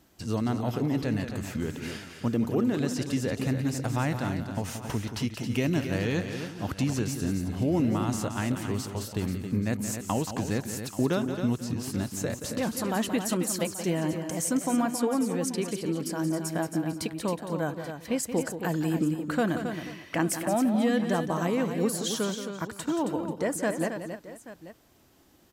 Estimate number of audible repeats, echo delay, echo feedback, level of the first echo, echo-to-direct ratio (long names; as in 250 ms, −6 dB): 4, 177 ms, repeats not evenly spaced, −10.0 dB, −5.5 dB